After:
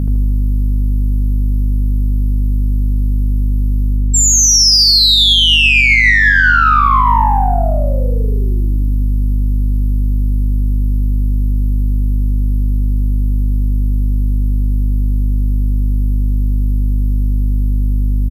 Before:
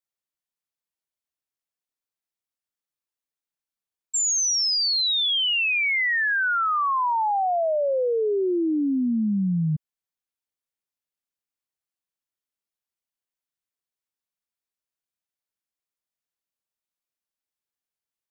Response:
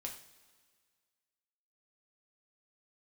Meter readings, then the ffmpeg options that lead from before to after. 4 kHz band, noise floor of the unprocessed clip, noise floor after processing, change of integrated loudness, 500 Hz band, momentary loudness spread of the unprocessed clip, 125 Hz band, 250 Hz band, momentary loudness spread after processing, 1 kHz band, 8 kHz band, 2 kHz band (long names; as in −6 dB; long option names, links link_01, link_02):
+13.0 dB, below −85 dBFS, −13 dBFS, +8.5 dB, −1.5 dB, 4 LU, +21.5 dB, +6.0 dB, 10 LU, +10.5 dB, can't be measured, +12.5 dB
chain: -filter_complex "[0:a]highpass=1100,aderivative,areverse,acompressor=threshold=-38dB:ratio=12,areverse,aexciter=amount=1.6:drive=2.8:freq=4100,aeval=exprs='val(0)+0.00631*(sin(2*PI*50*n/s)+sin(2*PI*2*50*n/s)/2+sin(2*PI*3*50*n/s)/3+sin(2*PI*4*50*n/s)/4+sin(2*PI*5*50*n/s)/5)':channel_layout=same,asplit=2[link_01][link_02];[link_02]asoftclip=type=tanh:threshold=-39dB,volume=-3dB[link_03];[link_01][link_03]amix=inputs=2:normalize=0,aecho=1:1:77|154|231|308|385|462:0.708|0.347|0.17|0.0833|0.0408|0.02,aresample=32000,aresample=44100,alimiter=level_in=27.5dB:limit=-1dB:release=50:level=0:latency=1,volume=-1dB"